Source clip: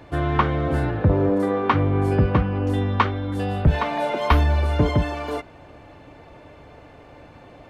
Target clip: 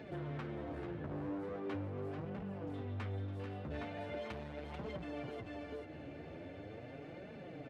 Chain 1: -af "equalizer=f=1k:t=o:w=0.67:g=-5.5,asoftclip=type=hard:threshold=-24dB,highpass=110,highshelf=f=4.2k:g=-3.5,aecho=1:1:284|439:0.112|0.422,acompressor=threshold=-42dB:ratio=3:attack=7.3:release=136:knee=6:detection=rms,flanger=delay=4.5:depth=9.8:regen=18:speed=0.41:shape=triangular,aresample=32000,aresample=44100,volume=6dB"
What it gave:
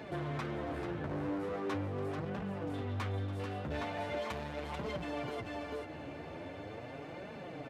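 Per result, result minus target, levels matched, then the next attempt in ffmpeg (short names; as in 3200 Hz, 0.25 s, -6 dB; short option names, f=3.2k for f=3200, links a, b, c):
compressor: peak gain reduction -4 dB; 4000 Hz band +3.5 dB; 1000 Hz band +3.0 dB
-af "equalizer=f=1k:t=o:w=0.67:g=-5.5,asoftclip=type=hard:threshold=-24dB,highpass=110,highshelf=f=4.2k:g=-3.5,aecho=1:1:284|439:0.112|0.422,acompressor=threshold=-48.5dB:ratio=3:attack=7.3:release=136:knee=6:detection=rms,flanger=delay=4.5:depth=9.8:regen=18:speed=0.41:shape=triangular,aresample=32000,aresample=44100,volume=6dB"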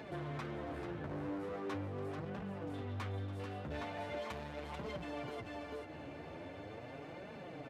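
4000 Hz band +3.5 dB; 1000 Hz band +3.0 dB
-af "equalizer=f=1k:t=o:w=0.67:g=-5.5,asoftclip=type=hard:threshold=-24dB,highpass=110,highshelf=f=4.2k:g=-14.5,aecho=1:1:284|439:0.112|0.422,acompressor=threshold=-48.5dB:ratio=3:attack=7.3:release=136:knee=6:detection=rms,flanger=delay=4.5:depth=9.8:regen=18:speed=0.41:shape=triangular,aresample=32000,aresample=44100,volume=6dB"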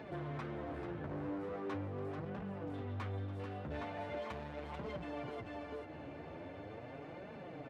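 1000 Hz band +3.0 dB
-af "equalizer=f=1k:t=o:w=0.67:g=-16,asoftclip=type=hard:threshold=-24dB,highpass=110,highshelf=f=4.2k:g=-14.5,aecho=1:1:284|439:0.112|0.422,acompressor=threshold=-48.5dB:ratio=3:attack=7.3:release=136:knee=6:detection=rms,flanger=delay=4.5:depth=9.8:regen=18:speed=0.41:shape=triangular,aresample=32000,aresample=44100,volume=6dB"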